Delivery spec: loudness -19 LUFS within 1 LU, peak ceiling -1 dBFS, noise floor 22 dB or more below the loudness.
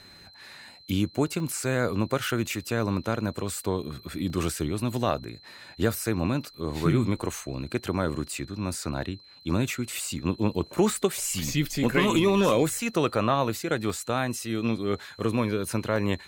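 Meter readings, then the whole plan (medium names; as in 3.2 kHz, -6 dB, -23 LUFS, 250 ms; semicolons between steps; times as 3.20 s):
dropouts 6; longest dropout 1.4 ms; steady tone 4.1 kHz; tone level -50 dBFS; loudness -27.5 LUFS; peak level -10.5 dBFS; loudness target -19.0 LUFS
-> interpolate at 1.40/4.30/9.95/12.49/13.90/15.96 s, 1.4 ms; band-stop 4.1 kHz, Q 30; trim +8.5 dB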